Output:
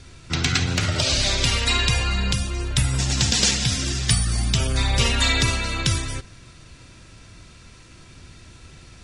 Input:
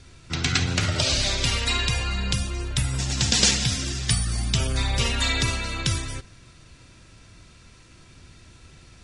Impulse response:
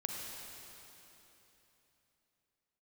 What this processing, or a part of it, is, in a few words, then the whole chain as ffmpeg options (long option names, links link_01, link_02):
limiter into clipper: -af "alimiter=limit=-10dB:level=0:latency=1:release=484,asoftclip=type=hard:threshold=-12dB,volume=4dB"